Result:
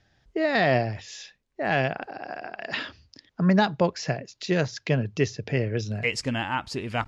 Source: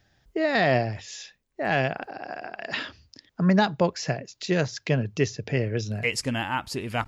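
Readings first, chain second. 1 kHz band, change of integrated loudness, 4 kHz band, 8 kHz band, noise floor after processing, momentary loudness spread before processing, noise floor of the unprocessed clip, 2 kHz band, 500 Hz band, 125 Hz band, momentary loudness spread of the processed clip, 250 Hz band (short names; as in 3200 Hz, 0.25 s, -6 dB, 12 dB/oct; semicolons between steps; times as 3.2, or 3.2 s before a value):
0.0 dB, 0.0 dB, -0.5 dB, -3.0 dB, -72 dBFS, 15 LU, -72 dBFS, 0.0 dB, 0.0 dB, 0.0 dB, 15 LU, 0.0 dB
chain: LPF 6700 Hz 12 dB/oct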